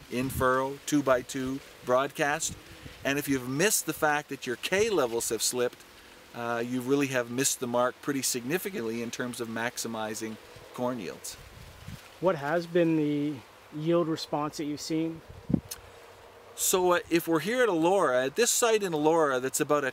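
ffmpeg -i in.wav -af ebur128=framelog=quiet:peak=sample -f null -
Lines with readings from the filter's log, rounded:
Integrated loudness:
  I:         -28.2 LUFS
  Threshold: -38.8 LUFS
Loudness range:
  LRA:         6.9 LU
  Threshold: -49.3 LUFS
  LRA low:   -32.8 LUFS
  LRA high:  -25.9 LUFS
Sample peak:
  Peak:       -9.8 dBFS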